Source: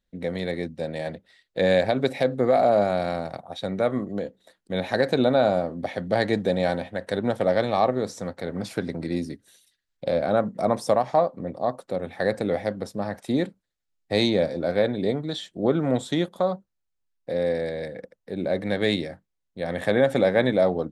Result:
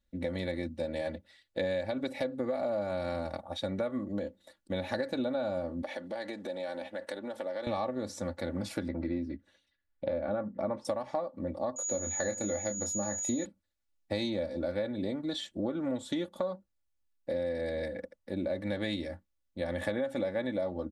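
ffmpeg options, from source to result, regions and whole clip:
ffmpeg -i in.wav -filter_complex "[0:a]asettb=1/sr,asplit=3[link_01][link_02][link_03];[link_01]atrim=end=5.824[link_04];[link_02]atrim=start=5.82:end=7.67,asetpts=PTS-STARTPTS,afade=type=in:duration=0.004:curve=qsin,afade=type=out:start_time=1.846:duration=0.004:curve=qsin,acompressor=threshold=-30dB:ratio=6:attack=3.2:release=140:knee=1:detection=peak,highpass=320[link_05];[link_03]atrim=start=7.666[link_06];[link_04][link_05]acrossfade=duration=0.004:curve1=hsin:curve2=qsin[link_07];[link_07][link_06]acrossfade=duration=0.004:curve1=qsin:curve2=hsin,asettb=1/sr,asplit=3[link_08][link_09][link_10];[link_08]atrim=end=8.884[link_11];[link_09]atrim=start=8.88:end=10.85,asetpts=PTS-STARTPTS,afade=type=in:duration=0.004:curve=qsin,afade=type=out:start_time=1.966:duration=0.004:curve=qsin,lowpass=2300,asplit=2[link_12][link_13];[link_13]adelay=15,volume=-12.5dB[link_14];[link_12][link_14]amix=inputs=2:normalize=0,atrim=end_sample=86877[link_15];[link_10]atrim=start=10.846[link_16];[link_11][link_15]acrossfade=duration=0.004:curve1=hsin:curve2=qsin[link_17];[link_17][link_16]acrossfade=duration=0.004:curve1=qsin:curve2=hsin,asettb=1/sr,asplit=3[link_18][link_19][link_20];[link_18]atrim=end=11.764[link_21];[link_19]atrim=start=11.76:end=13.45,asetpts=PTS-STARTPTS,afade=type=in:duration=0.004:curve=qsin,afade=type=out:start_time=1.686:duration=0.004:curve=qsin,aeval=exprs='val(0)+0.0282*sin(2*PI*6800*n/s)':channel_layout=same,asplit=2[link_22][link_23];[link_23]adelay=25,volume=-7.5dB[link_24];[link_22][link_24]amix=inputs=2:normalize=0,atrim=end_sample=74529[link_25];[link_20]atrim=start=13.446[link_26];[link_21][link_25]acrossfade=duration=0.004:curve1=hsin:curve2=qsin[link_27];[link_27][link_26]acrossfade=duration=0.004:curve1=qsin:curve2=hsin,equalizer=frequency=82:width_type=o:width=1.2:gain=8.5,aecho=1:1:3.5:0.74,acompressor=threshold=-26dB:ratio=6,volume=-4dB" out.wav

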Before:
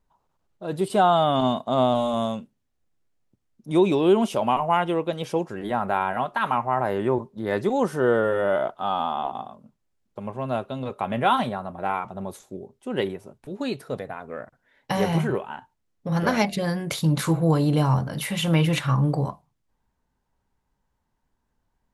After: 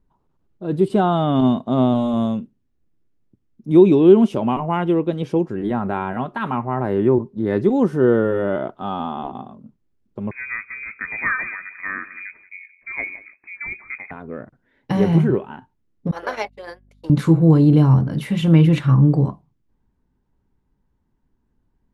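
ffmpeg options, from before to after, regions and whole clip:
ffmpeg -i in.wav -filter_complex "[0:a]asettb=1/sr,asplit=3[link_01][link_02][link_03];[link_01]atrim=end=10.314[link_04];[link_02]atrim=start=10.31:end=14.11,asetpts=PTS-STARTPTS,afade=type=in:duration=0.004:curve=qsin,afade=type=out:start_time=3.796:duration=0.004:curve=qsin,lowpass=frequency=2200:width_type=q:width=0.5098,lowpass=frequency=2200:width_type=q:width=0.6013,lowpass=frequency=2200:width_type=q:width=0.9,lowpass=frequency=2200:width_type=q:width=2.563,afreqshift=-2600,aecho=1:1:179:0.141,atrim=end_sample=167580[link_05];[link_03]atrim=start=14.106[link_06];[link_04][link_05]acrossfade=duration=0.004:curve1=hsin:curve2=qsin[link_07];[link_07][link_06]acrossfade=duration=0.004:curve1=qsin:curve2=hsin,asettb=1/sr,asplit=3[link_08][link_09][link_10];[link_08]atrim=end=16.114[link_11];[link_09]atrim=start=16.11:end=17.1,asetpts=PTS-STARTPTS,afade=type=in:duration=0.004:curve=qsin,afade=type=out:start_time=0.986:duration=0.004:curve=qsin,agate=range=-42dB:threshold=-25dB:ratio=16:release=100:detection=peak,highpass=frequency=510:width=0.5412,highpass=frequency=510:width=1.3066,aeval=exprs='val(0)+0.000891*(sin(2*PI*50*n/s)+sin(2*PI*2*50*n/s)/2+sin(2*PI*3*50*n/s)/3+sin(2*PI*4*50*n/s)/4+sin(2*PI*5*50*n/s)/5)':channel_layout=same[link_12];[link_10]atrim=start=17.096[link_13];[link_11][link_12]acrossfade=duration=0.004:curve1=hsin:curve2=qsin[link_14];[link_14][link_13]acrossfade=duration=0.004:curve1=qsin:curve2=hsin,lowpass=frequency=2700:poles=1,lowshelf=frequency=460:width_type=q:width=1.5:gain=7.5" out.wav

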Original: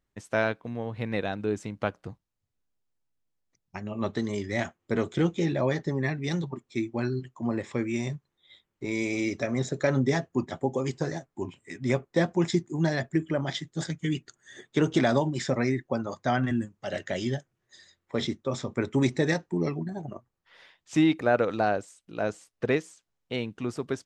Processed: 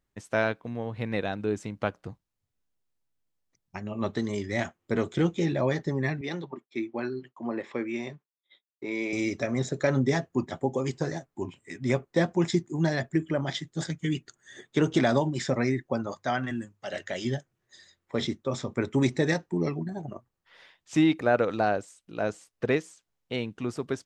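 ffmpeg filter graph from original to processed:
ffmpeg -i in.wav -filter_complex "[0:a]asettb=1/sr,asplit=3[link_01][link_02][link_03];[link_01]atrim=end=6.214[link_04];[link_02]atrim=start=6.21:end=9.13,asetpts=PTS-STARTPTS,afade=type=in:duration=0.004:curve=qsin,afade=type=out:start_time=2.916:duration=0.004:curve=qsin,agate=range=-33dB:threshold=-51dB:ratio=3:release=100:detection=peak,highpass=270,lowpass=3600[link_05];[link_03]atrim=start=9.126[link_06];[link_04][link_05]acrossfade=duration=0.004:curve1=hsin:curve2=qsin[link_07];[link_07][link_06]acrossfade=duration=0.004:curve1=qsin:curve2=hsin,asettb=1/sr,asplit=3[link_08][link_09][link_10];[link_08]atrim=end=16.124[link_11];[link_09]atrim=start=16.12:end=17.25,asetpts=PTS-STARTPTS,afade=type=in:duration=0.004:curve=qsin,afade=type=out:start_time=1.126:duration=0.004:curve=qsin,lowshelf=frequency=390:gain=-7.5,bandreject=frequency=50:width_type=h:width=6,bandreject=frequency=100:width_type=h:width=6,bandreject=frequency=150:width_type=h:width=6[link_12];[link_10]atrim=start=17.246[link_13];[link_11][link_12]acrossfade=duration=0.004:curve1=hsin:curve2=qsin[link_14];[link_14][link_13]acrossfade=duration=0.004:curve1=qsin:curve2=hsin" out.wav

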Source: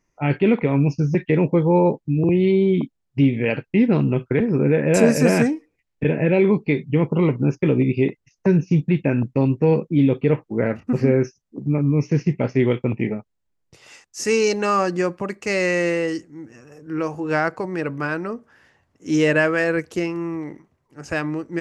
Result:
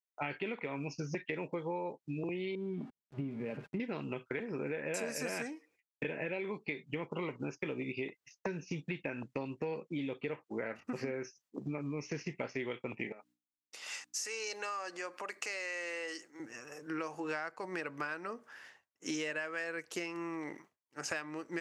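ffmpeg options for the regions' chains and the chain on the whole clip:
ffmpeg -i in.wav -filter_complex "[0:a]asettb=1/sr,asplit=3[link_01][link_02][link_03];[link_01]atrim=end=2.554[link_04];[link_02]atrim=start=2.55:end=3.8,asetpts=PTS-STARTPTS,afade=type=in:duration=0.004:curve=qsin,afade=type=out:start_time=1.246:duration=0.004:curve=qsin,aeval=exprs='val(0)+0.5*0.0398*sgn(val(0))':channel_layout=same,bandpass=frequency=120:width_type=q:width=0.78,aecho=1:1:4.9:0.31,atrim=end_sample=55125[link_05];[link_03]atrim=start=3.796[link_06];[link_04][link_05]acrossfade=duration=0.004:curve1=hsin:curve2=qsin[link_07];[link_07][link_06]acrossfade=duration=0.004:curve1=qsin:curve2=hsin,asettb=1/sr,asplit=3[link_08][link_09][link_10];[link_08]atrim=end=13.124[link_11];[link_09]atrim=start=13.12:end=16.4,asetpts=PTS-STARTPTS,afade=type=in:duration=0.004:curve=qsin,afade=type=out:start_time=3.276:duration=0.004:curve=qsin,acompressor=threshold=-33dB:ratio=4:attack=3.2:release=140:knee=1:detection=peak,aeval=exprs='val(0)+0.00398*(sin(2*PI*60*n/s)+sin(2*PI*2*60*n/s)/2+sin(2*PI*3*60*n/s)/3+sin(2*PI*4*60*n/s)/4+sin(2*PI*5*60*n/s)/5)':channel_layout=same,highpass=420[link_12];[link_10]atrim=start=16.396[link_13];[link_11][link_12]acrossfade=duration=0.004:curve1=hsin:curve2=qsin[link_14];[link_14][link_13]acrossfade=duration=0.004:curve1=qsin:curve2=hsin,highpass=frequency=1200:poles=1,agate=range=-33dB:threshold=-57dB:ratio=3:detection=peak,acompressor=threshold=-39dB:ratio=10,volume=4dB" out.wav

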